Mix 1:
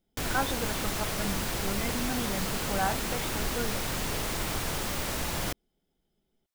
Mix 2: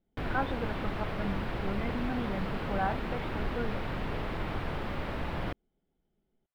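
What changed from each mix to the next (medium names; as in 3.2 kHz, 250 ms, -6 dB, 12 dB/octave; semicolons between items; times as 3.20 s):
master: add distance through air 450 m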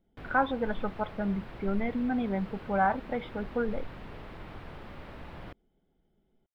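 speech +6.0 dB; background -10.0 dB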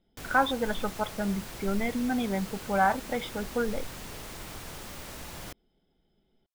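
master: remove distance through air 450 m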